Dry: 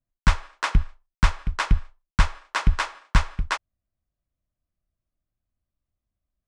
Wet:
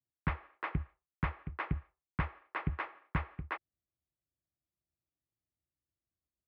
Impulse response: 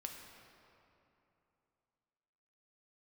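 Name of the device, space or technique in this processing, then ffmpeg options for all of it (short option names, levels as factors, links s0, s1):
bass cabinet: -af "highpass=f=71:w=0.5412,highpass=f=71:w=1.3066,equalizer=f=94:t=q:w=4:g=-7,equalizer=f=220:t=q:w=4:g=-7,equalizer=f=340:t=q:w=4:g=5,equalizer=f=620:t=q:w=4:g=-4,equalizer=f=980:t=q:w=4:g=-7,equalizer=f=1500:t=q:w=4:g=-8,lowpass=f=2100:w=0.5412,lowpass=f=2100:w=1.3066,volume=0.473"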